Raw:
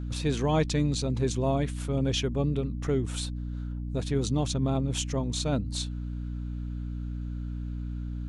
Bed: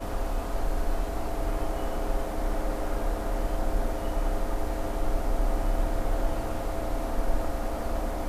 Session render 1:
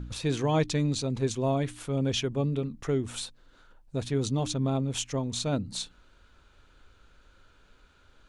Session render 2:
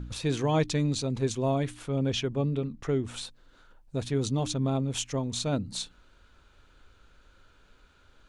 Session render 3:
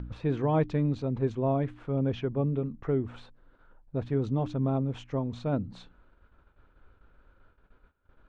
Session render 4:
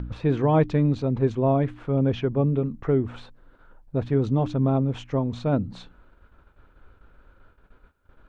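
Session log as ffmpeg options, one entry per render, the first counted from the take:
-af "bandreject=f=60:t=h:w=4,bandreject=f=120:t=h:w=4,bandreject=f=180:t=h:w=4,bandreject=f=240:t=h:w=4,bandreject=f=300:t=h:w=4"
-filter_complex "[0:a]asettb=1/sr,asplit=3[a][b][c];[a]atrim=end=1.744[d];[b]atrim=start=1.74:end=3.25,asetpts=PTS-STARTPTS,afade=t=in:d=0.004:c=qsin,afade=t=out:st=1.506:d=0.004:c=qsin,highshelf=f=8.3k:g=-10[e];[c]atrim=start=3.246[f];[d][e]acrossfade=d=0.004:c1=hsin:c2=qsin[g];[g][f]acrossfade=d=0.004:c1=qsin:c2=hsin"
-af "lowpass=1.5k,agate=range=-16dB:threshold=-58dB:ratio=16:detection=peak"
-af "volume=6dB"

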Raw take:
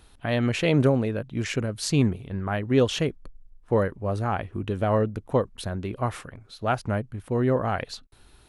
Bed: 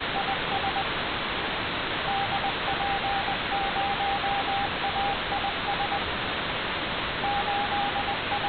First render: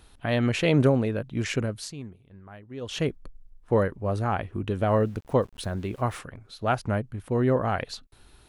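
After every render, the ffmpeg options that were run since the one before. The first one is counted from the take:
-filter_complex "[0:a]asettb=1/sr,asplit=3[a][b][c];[a]atrim=end=4.884[d];[b]atrim=start=4.88:end=6.19,asetpts=PTS-STARTPTS,afade=t=in:d=0.004:c=qsin,afade=t=out:st=1.306:d=0.004:c=qsin,aeval=exprs='val(0)*gte(abs(val(0)),0.00355)':c=same[e];[c]atrim=start=6.186[f];[d][e]acrossfade=d=0.004:c1=hsin:c2=qsin[g];[g][f]acrossfade=d=0.004:c1=qsin:c2=hsin,asplit=3[h][i][j];[h]atrim=end=1.94,asetpts=PTS-STARTPTS,afade=t=out:st=1.68:d=0.26:silence=0.125893[k];[i]atrim=start=1.94:end=2.81,asetpts=PTS-STARTPTS,volume=-18dB[l];[j]atrim=start=2.81,asetpts=PTS-STARTPTS,afade=t=in:d=0.26:silence=0.125893[m];[k][l][m]concat=n=3:v=0:a=1"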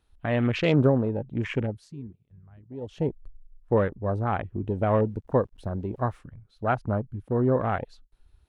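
-af "afwtdn=0.02,highshelf=f=5.4k:g=-5.5"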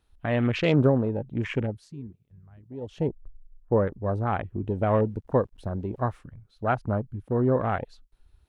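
-filter_complex "[0:a]asettb=1/sr,asplit=3[a][b][c];[a]atrim=end=3.084[d];[b]atrim=start=3.08:end=3.87,asetpts=PTS-STARTPTS,afade=t=in:d=0.004:c=qsin,afade=t=out:st=0.786:d=0.004:c=qsin,lowpass=1.2k[e];[c]atrim=start=3.866[f];[d][e]acrossfade=d=0.004:c1=hsin:c2=qsin[g];[g][f]acrossfade=d=0.004:c1=qsin:c2=hsin"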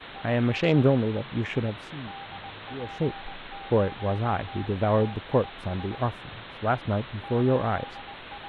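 -filter_complex "[1:a]volume=-13dB[a];[0:a][a]amix=inputs=2:normalize=0"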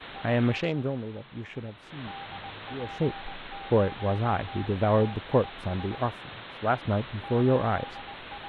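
-filter_complex "[0:a]asettb=1/sr,asplit=3[a][b][c];[a]atrim=end=5.994[d];[b]atrim=start=5.99:end=6.83,asetpts=PTS-STARTPTS,afade=t=in:d=0.004:c=qsin,afade=t=out:st=0.836:d=0.004:c=qsin,lowshelf=f=110:g=-8.5[e];[c]atrim=start=6.826[f];[d][e]acrossfade=d=0.004:c1=hsin:c2=qsin[g];[g][f]acrossfade=d=0.004:c1=qsin:c2=hsin,asplit=3[h][i][j];[h]atrim=end=0.75,asetpts=PTS-STARTPTS,afade=t=out:st=0.49:d=0.26:silence=0.316228[k];[i]atrim=start=0.75:end=1.81,asetpts=PTS-STARTPTS,volume=-10dB[l];[j]atrim=start=1.81,asetpts=PTS-STARTPTS,afade=t=in:d=0.26:silence=0.316228[m];[k][l][m]concat=n=3:v=0:a=1"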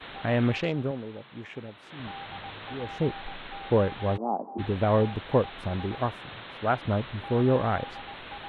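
-filter_complex "[0:a]asettb=1/sr,asplit=3[a][b][c];[a]atrim=end=0.914[d];[b]atrim=start=0.91:end=2,asetpts=PTS-STARTPTS,afade=t=in:d=0.004:c=qsin,afade=t=out:st=1.086:d=0.004:c=qsin,highpass=f=190:p=1[e];[c]atrim=start=1.996[f];[d][e]acrossfade=d=0.004:c1=hsin:c2=qsin[g];[g][f]acrossfade=d=0.004:c1=qsin:c2=hsin,asplit=3[h][i][j];[h]afade=t=out:st=4.16:d=0.02[k];[i]asuperpass=centerf=440:order=12:qfactor=0.57,afade=t=in:st=4.16:d=0.02,afade=t=out:st=4.58:d=0.02[l];[j]afade=t=in:st=4.58:d=0.02[m];[k][l][m]amix=inputs=3:normalize=0"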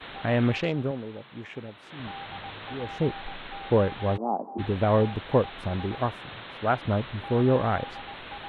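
-af "volume=1dB"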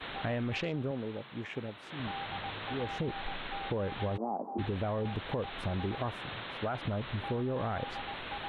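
-af "alimiter=limit=-21.5dB:level=0:latency=1:release=10,acompressor=threshold=-30dB:ratio=6"

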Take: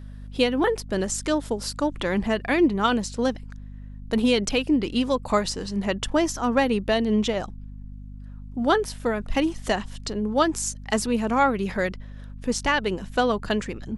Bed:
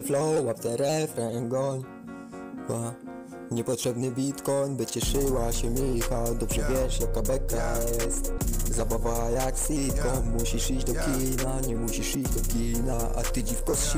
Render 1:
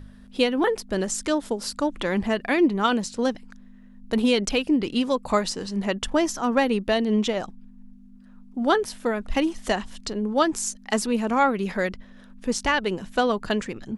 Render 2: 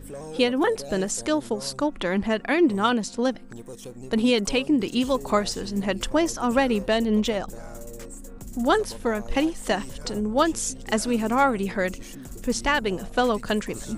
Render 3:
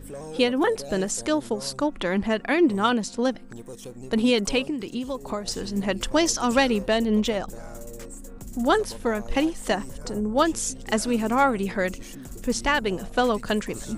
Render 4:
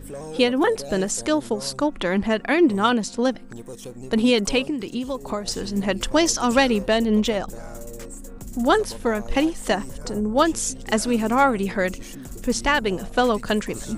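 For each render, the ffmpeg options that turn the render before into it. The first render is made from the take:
-af "bandreject=f=50:t=h:w=4,bandreject=f=100:t=h:w=4,bandreject=f=150:t=h:w=4"
-filter_complex "[1:a]volume=-12.5dB[a];[0:a][a]amix=inputs=2:normalize=0"
-filter_complex "[0:a]asettb=1/sr,asplit=3[a][b][c];[a]atrim=end=4.624[d];[b]atrim=start=4.62:end=5.48,asetpts=PTS-STARTPTS,afade=t=in:d=0.004:c=qsin,afade=t=out:st=0.856:d=0.004:c=qsin,acrossover=split=1100|5300[e][f][g];[e]acompressor=threshold=-28dB:ratio=4[h];[f]acompressor=threshold=-44dB:ratio=4[i];[g]acompressor=threshold=-54dB:ratio=4[j];[h][i][j]amix=inputs=3:normalize=0[k];[c]atrim=start=5.476[l];[d][k]acrossfade=d=0.004:c1=hsin:c2=qsin[m];[m][l]acrossfade=d=0.004:c1=qsin:c2=hsin,asettb=1/sr,asplit=3[n][o][p];[n]atrim=end=6.134[q];[o]atrim=start=6.13:end=6.7,asetpts=PTS-STARTPTS,afade=t=in:d=0.004:c=qsin,afade=t=out:st=0.566:d=0.004:c=qsin,equalizer=f=4.8k:t=o:w=1.7:g=10[r];[p]atrim=start=6.696[s];[q][r]acrossfade=d=0.004:c1=hsin:c2=qsin[t];[t][s]acrossfade=d=0.004:c1=qsin:c2=hsin,asettb=1/sr,asplit=3[u][v][w];[u]atrim=end=9.744[x];[v]atrim=start=9.74:end=10.35,asetpts=PTS-STARTPTS,afade=t=in:d=0.004:c=qsin,afade=t=out:st=0.606:d=0.004:c=qsin,equalizer=f=3.3k:w=0.97:g=-9.5[y];[w]atrim=start=10.346[z];[x][y]acrossfade=d=0.004:c1=hsin:c2=qsin[aa];[aa][z]acrossfade=d=0.004:c1=qsin:c2=hsin"
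-af "volume=2.5dB"

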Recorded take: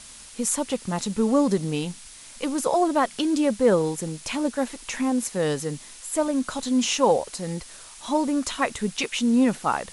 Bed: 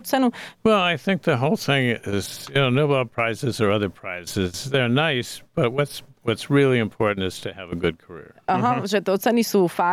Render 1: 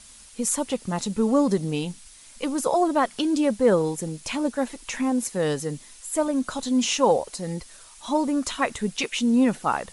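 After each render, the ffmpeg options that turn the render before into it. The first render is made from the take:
-af "afftdn=nr=6:nf=-45"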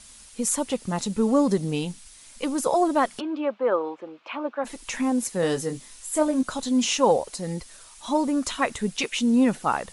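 -filter_complex "[0:a]asplit=3[a][b][c];[a]afade=t=out:st=3.19:d=0.02[d];[b]highpass=f=350:w=0.5412,highpass=f=350:w=1.3066,equalizer=f=430:t=q:w=4:g=-8,equalizer=f=1.2k:t=q:w=4:g=6,equalizer=f=1.9k:t=q:w=4:g=-7,lowpass=f=2.7k:w=0.5412,lowpass=f=2.7k:w=1.3066,afade=t=in:st=3.19:d=0.02,afade=t=out:st=4.64:d=0.02[e];[c]afade=t=in:st=4.64:d=0.02[f];[d][e][f]amix=inputs=3:normalize=0,asettb=1/sr,asplit=3[g][h][i];[g]atrim=end=5.404[j];[h]atrim=start=5.4:end=6.43,asetpts=PTS-STARTPTS,afade=t=in:d=0.004:c=qsin,afade=t=out:st=1.026:d=0.004:c=qsin,asplit=2[k][l];[l]adelay=23,volume=-7dB[m];[k][m]amix=inputs=2:normalize=0,atrim=end_sample=45423[n];[i]atrim=start=6.426[o];[j][n]acrossfade=d=0.004:c1=hsin:c2=qsin[p];[p][o]acrossfade=d=0.004:c1=qsin:c2=hsin"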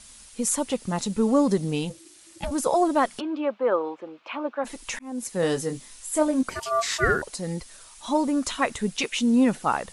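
-filter_complex "[0:a]asplit=3[a][b][c];[a]afade=t=out:st=1.89:d=0.02[d];[b]aeval=exprs='val(0)*sin(2*PI*330*n/s)':c=same,afade=t=in:st=1.89:d=0.02,afade=t=out:st=2.5:d=0.02[e];[c]afade=t=in:st=2.5:d=0.02[f];[d][e][f]amix=inputs=3:normalize=0,asettb=1/sr,asplit=3[g][h][i];[g]atrim=end=6.494[j];[h]atrim=start=6.49:end=7.22,asetpts=PTS-STARTPTS,afade=t=in:d=0.004:c=qsin,afade=t=out:st=0.726:d=0.004:c=qsin,aeval=exprs='val(0)*sin(2*PI*920*n/s)':c=same[k];[i]atrim=start=7.216[l];[j][k]acrossfade=d=0.004:c1=hsin:c2=qsin[m];[m][l]acrossfade=d=0.004:c1=qsin:c2=hsin,asplit=2[n][o];[n]atrim=end=4.99,asetpts=PTS-STARTPTS,afade=t=out:st=4.986:d=0.004:c=hsin[p];[o]atrim=start=4.99,asetpts=PTS-STARTPTS,afade=t=in:d=0.42[q];[p][q]concat=n=2:v=0:a=1"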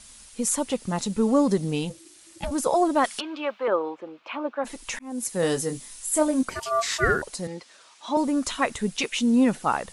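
-filter_complex "[0:a]asettb=1/sr,asplit=3[a][b][c];[a]atrim=end=3.044[d];[b]atrim=start=3.04:end=3.68,asetpts=PTS-STARTPTS,afade=t=in:d=0.004:c=qsin,afade=t=out:st=0.636:d=0.004:c=qsin,tiltshelf=f=790:g=-8.5[e];[c]atrim=start=3.676[f];[d][e]acrossfade=d=0.004:c1=hsin:c2=qsin[g];[g][f]acrossfade=d=0.004:c1=qsin:c2=hsin,asettb=1/sr,asplit=3[h][i][j];[h]atrim=end=5.104[k];[i]atrim=start=5.1:end=6.45,asetpts=PTS-STARTPTS,afade=t=in:d=0.004:c=qsin,afade=t=out:st=1.346:d=0.004:c=qsin,highshelf=f=8.9k:g=9.5[l];[j]atrim=start=6.446[m];[k][l]acrossfade=d=0.004:c1=hsin:c2=qsin[n];[n][m]acrossfade=d=0.004:c1=qsin:c2=hsin,asettb=1/sr,asplit=3[o][p][q];[o]atrim=end=7.474[r];[p]atrim=start=7.47:end=8.17,asetpts=PTS-STARTPTS,afade=t=in:d=0.004:c=qsin,afade=t=out:st=0.696:d=0.004:c=qsin,highpass=290,lowpass=5k[s];[q]atrim=start=8.166[t];[r][s]acrossfade=d=0.004:c1=hsin:c2=qsin[u];[u][t]acrossfade=d=0.004:c1=qsin:c2=hsin"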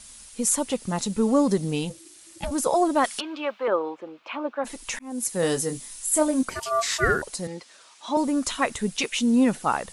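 -af "highshelf=f=7.3k:g=4.5"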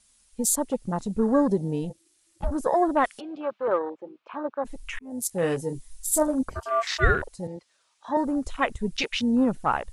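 -af "afwtdn=0.0251,asubboost=boost=3.5:cutoff=100"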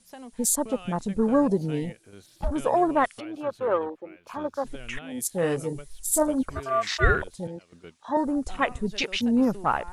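-filter_complex "[1:a]volume=-24dB[a];[0:a][a]amix=inputs=2:normalize=0"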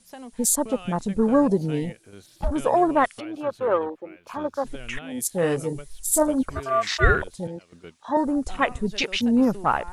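-af "volume=2.5dB"

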